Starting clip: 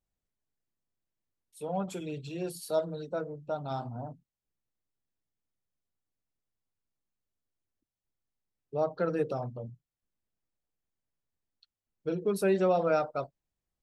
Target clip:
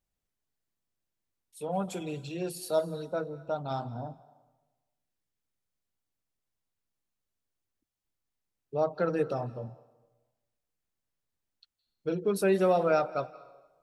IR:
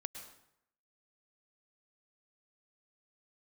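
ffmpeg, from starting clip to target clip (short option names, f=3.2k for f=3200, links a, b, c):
-filter_complex "[0:a]asplit=2[a][b];[1:a]atrim=start_sample=2205,asetrate=27783,aresample=44100,lowshelf=f=440:g=-11.5[c];[b][c]afir=irnorm=-1:irlink=0,volume=-8.5dB[d];[a][d]amix=inputs=2:normalize=0"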